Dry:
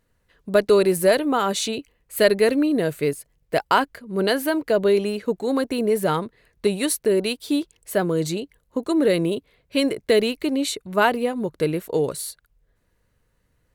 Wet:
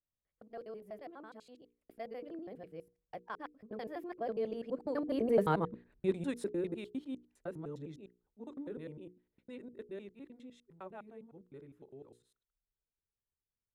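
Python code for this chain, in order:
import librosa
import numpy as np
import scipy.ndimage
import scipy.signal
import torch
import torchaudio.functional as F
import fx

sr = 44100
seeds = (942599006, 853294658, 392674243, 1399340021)

y = fx.local_reverse(x, sr, ms=92.0)
y = fx.doppler_pass(y, sr, speed_mps=36, closest_m=14.0, pass_at_s=5.55)
y = fx.lowpass(y, sr, hz=1100.0, slope=6)
y = fx.hum_notches(y, sr, base_hz=60, count=8)
y = F.gain(torch.from_numpy(y), -5.5).numpy()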